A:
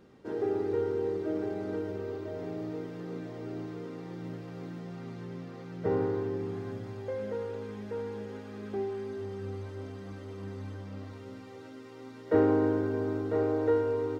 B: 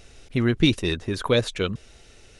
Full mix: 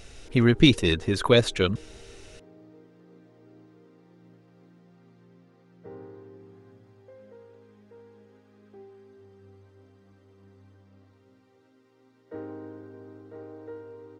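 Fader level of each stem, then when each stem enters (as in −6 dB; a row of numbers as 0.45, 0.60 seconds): −15.0, +2.0 decibels; 0.00, 0.00 seconds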